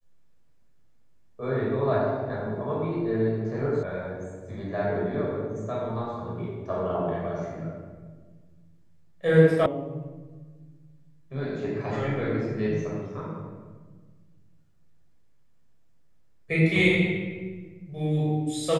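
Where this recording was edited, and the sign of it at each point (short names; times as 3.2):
3.83 sound cut off
9.66 sound cut off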